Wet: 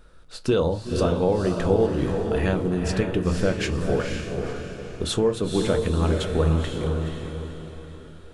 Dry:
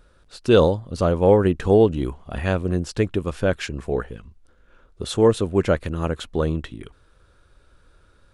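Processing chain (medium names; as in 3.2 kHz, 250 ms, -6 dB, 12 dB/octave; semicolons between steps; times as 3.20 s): compression 6:1, threshold -21 dBFS, peak gain reduction 11 dB; echo that smears into a reverb 496 ms, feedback 43%, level -4 dB; on a send at -8 dB: reverberation RT60 0.25 s, pre-delay 5 ms; on the sum: trim +1.5 dB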